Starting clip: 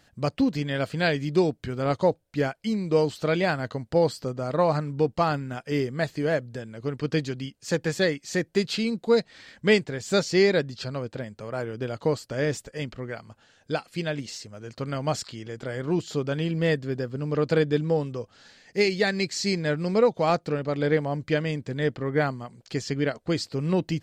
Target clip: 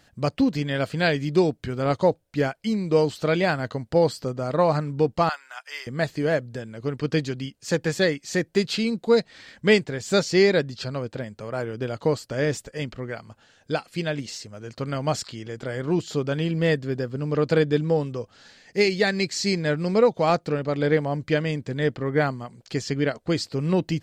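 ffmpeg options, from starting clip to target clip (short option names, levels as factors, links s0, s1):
-filter_complex "[0:a]asettb=1/sr,asplit=3[s0][s1][s2];[s0]atrim=end=5.294[s3];[s1]atrim=start=5.29:end=5.87,asetpts=PTS-STARTPTS,afade=t=in:d=0.004:c=qsin,afade=t=out:st=0.576:d=0.004:c=qsin,highpass=f=910:w=0.5412,highpass=f=910:w=1.3066[s4];[s2]atrim=start=5.866[s5];[s3][s4]acrossfade=d=0.004:c1=hsin:c2=qsin[s6];[s6][s5]acrossfade=d=0.004:c1=qsin:c2=hsin,volume=1.26"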